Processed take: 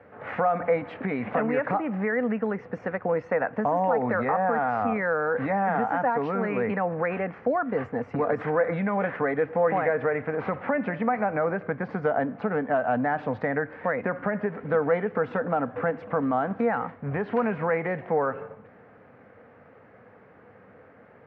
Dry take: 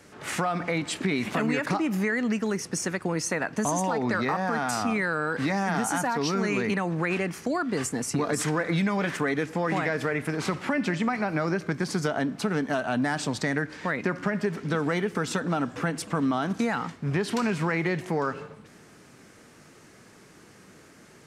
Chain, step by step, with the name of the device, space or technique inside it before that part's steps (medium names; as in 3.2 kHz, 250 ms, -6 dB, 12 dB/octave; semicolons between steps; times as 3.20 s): bass cabinet (cabinet simulation 77–2000 Hz, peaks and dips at 96 Hz +4 dB, 160 Hz -6 dB, 350 Hz -10 dB, 500 Hz +10 dB, 740 Hz +6 dB)